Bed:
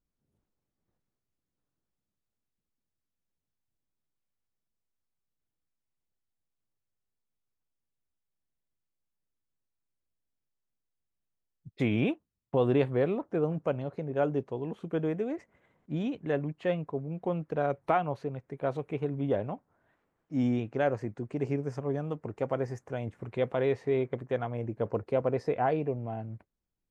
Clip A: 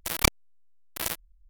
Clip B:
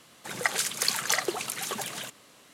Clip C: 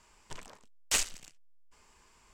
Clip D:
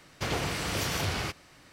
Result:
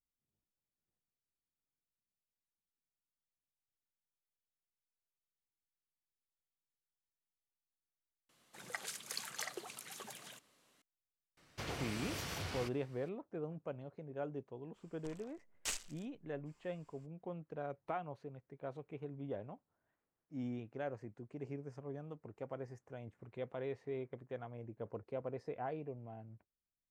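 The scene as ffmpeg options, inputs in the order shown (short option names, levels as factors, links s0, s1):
-filter_complex "[0:a]volume=0.2[s0];[2:a]atrim=end=2.53,asetpts=PTS-STARTPTS,volume=0.15,afade=t=in:d=0.004:c=hsin,afade=t=out:st=2.526:d=0.004:c=hsin,adelay=8290[s1];[4:a]atrim=end=1.72,asetpts=PTS-STARTPTS,volume=0.251,afade=t=in:d=0.004:c=hsin,afade=t=out:st=1.716:d=0.004:c=hsin,adelay=11370[s2];[3:a]atrim=end=2.33,asetpts=PTS-STARTPTS,volume=0.266,afade=t=in:d=0.02,afade=t=out:st=2.31:d=0.02,adelay=14740[s3];[s0][s1][s2][s3]amix=inputs=4:normalize=0"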